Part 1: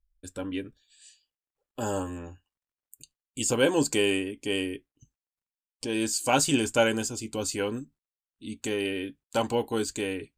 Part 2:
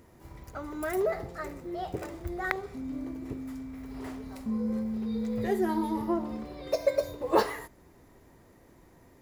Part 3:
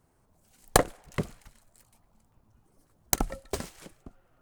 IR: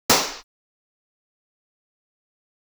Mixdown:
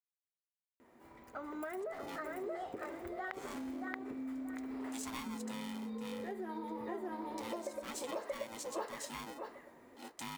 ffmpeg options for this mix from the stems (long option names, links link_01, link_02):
-filter_complex "[0:a]lowshelf=frequency=250:gain=-8.5,aeval=exprs='val(0)*sgn(sin(2*PI*560*n/s))':channel_layout=same,adelay=1550,volume=-11dB[link_01];[1:a]aexciter=amount=1.4:drive=6.5:freq=7500,bass=frequency=250:gain=-10,treble=frequency=4000:gain=-12,dynaudnorm=framelen=510:gausssize=3:maxgain=4.5dB,adelay=800,volume=-3.5dB,asplit=2[link_02][link_03];[link_03]volume=-7.5dB[link_04];[link_01][link_02]amix=inputs=2:normalize=0,equalizer=frequency=240:width=4.3:gain=11,acompressor=threshold=-35dB:ratio=4,volume=0dB[link_05];[link_04]aecho=0:1:629|1258|1887|2516:1|0.22|0.0484|0.0106[link_06];[link_05][link_06]amix=inputs=2:normalize=0,lowshelf=frequency=170:gain=-11,acompressor=threshold=-40dB:ratio=2.5"